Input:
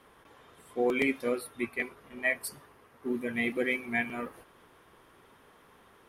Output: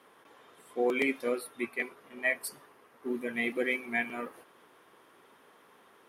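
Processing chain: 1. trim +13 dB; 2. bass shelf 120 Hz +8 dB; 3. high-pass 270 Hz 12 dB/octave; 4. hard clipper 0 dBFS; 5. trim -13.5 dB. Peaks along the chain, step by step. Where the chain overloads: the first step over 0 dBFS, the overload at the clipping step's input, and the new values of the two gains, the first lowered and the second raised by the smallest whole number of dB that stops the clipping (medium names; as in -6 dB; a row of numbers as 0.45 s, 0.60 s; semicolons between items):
-2.0 dBFS, -0.5 dBFS, -2.5 dBFS, -2.5 dBFS, -16.0 dBFS; nothing clips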